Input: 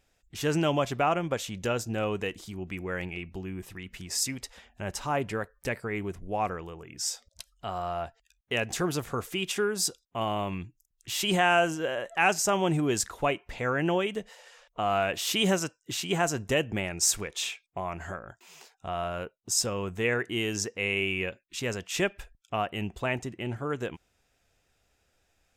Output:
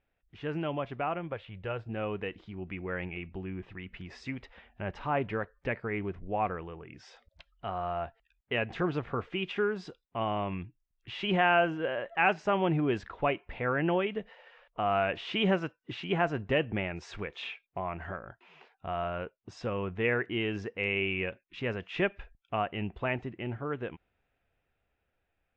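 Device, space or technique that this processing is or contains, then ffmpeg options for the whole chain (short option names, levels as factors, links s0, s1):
action camera in a waterproof case: -filter_complex "[0:a]asettb=1/sr,asplit=3[s0][s1][s2];[s0]atrim=end=1.324[s3];[s1]atrim=start=1.32:end=1.89,asetpts=PTS-STARTPTS,afade=t=in:d=0.004:c=qsin,afade=t=out:st=0.566:d=0.004:c=qsin,equalizer=f=100:t=o:w=0.67:g=4,equalizer=f=250:t=o:w=0.67:g=-10,equalizer=f=6300:t=o:w=0.67:g=-12[s4];[s2]atrim=start=1.886[s5];[s3][s4]acrossfade=d=0.004:c1=hsin:c2=qsin[s6];[s6][s5]acrossfade=d=0.004:c1=qsin:c2=hsin,lowpass=f=2900:w=0.5412,lowpass=f=2900:w=1.3066,dynaudnorm=f=410:g=11:m=2.11,volume=0.422" -ar 22050 -c:a aac -b:a 64k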